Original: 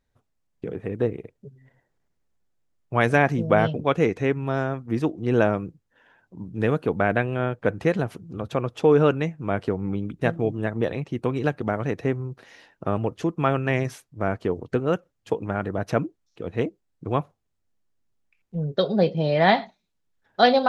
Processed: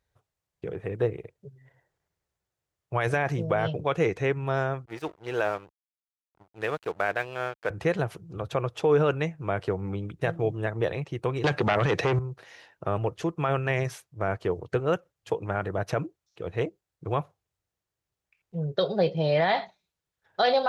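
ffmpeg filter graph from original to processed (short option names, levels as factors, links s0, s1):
-filter_complex "[0:a]asettb=1/sr,asplit=3[s0][s1][s2];[s0]atrim=end=4.854[s3];[s1]atrim=start=4.85:end=7.7,asetpts=PTS-STARTPTS,afade=t=in:d=0.004:c=qsin,afade=t=out:st=2.846:d=0.004:c=qsin,highpass=f=600:p=1,aeval=exprs='sgn(val(0))*max(abs(val(0))-0.00668,0)':c=same[s4];[s2]atrim=start=7.696[s5];[s3][s4]acrossfade=d=0.004:c1=hsin:c2=qsin[s6];[s6][s5]acrossfade=d=0.004:c1=qsin:c2=hsin,asettb=1/sr,asplit=3[s7][s8][s9];[s7]atrim=end=11.444[s10];[s8]atrim=start=11.44:end=12.19,asetpts=PTS-STARTPTS,afade=t=in:d=0.004:c=qsin,afade=t=out:st=0.746:d=0.004:c=qsin,aemphasis=mode=production:type=75kf,aeval=exprs='0.376*sin(PI/2*2.82*val(0)/0.376)':c=same,highpass=120,lowpass=4200[s11];[s9]atrim=start=12.186[s12];[s10][s11]acrossfade=d=0.004:c1=hsin:c2=qsin[s13];[s13][s12]acrossfade=d=0.004:c1=qsin:c2=hsin,highpass=48,equalizer=f=240:t=o:w=0.56:g=-14.5,alimiter=limit=0.211:level=0:latency=1:release=30"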